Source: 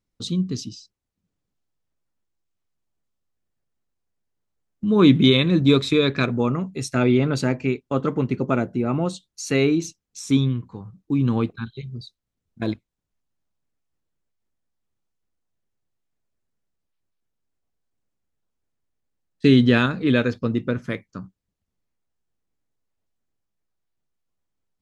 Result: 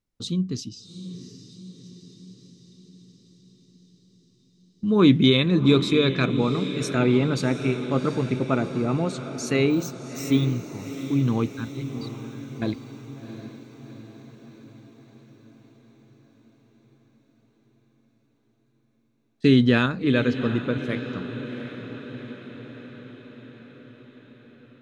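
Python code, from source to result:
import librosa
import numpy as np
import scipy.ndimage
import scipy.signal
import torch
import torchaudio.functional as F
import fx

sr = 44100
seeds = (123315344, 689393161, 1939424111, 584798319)

y = fx.resample_bad(x, sr, factor=2, down='filtered', up='hold', at=(9.7, 10.61))
y = fx.echo_diffused(y, sr, ms=736, feedback_pct=61, wet_db=-11.0)
y = F.gain(torch.from_numpy(y), -2.0).numpy()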